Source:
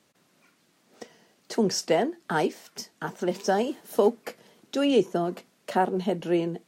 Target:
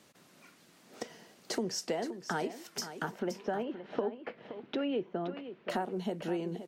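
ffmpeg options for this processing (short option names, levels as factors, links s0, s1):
-filter_complex "[0:a]asettb=1/sr,asplit=3[s0][s1][s2];[s0]atrim=end=3.114[s3];[s1]atrim=start=3.11:end=5.7,asetpts=PTS-STARTPTS,afade=t=in:d=0.004:c=qsin,afade=t=out:st=2.586:d=0.004:c=qsin,lowpass=f=3000:w=0.5412,lowpass=f=3000:w=1.3066[s4];[s2]atrim=start=5.696[s5];[s3][s4]acrossfade=d=0.004:c1=hsin:c2=qsin[s6];[s6][s5]acrossfade=d=0.004:c1=qsin:c2=hsin,acompressor=threshold=0.0126:ratio=4,aecho=1:1:522:0.266,volume=1.58"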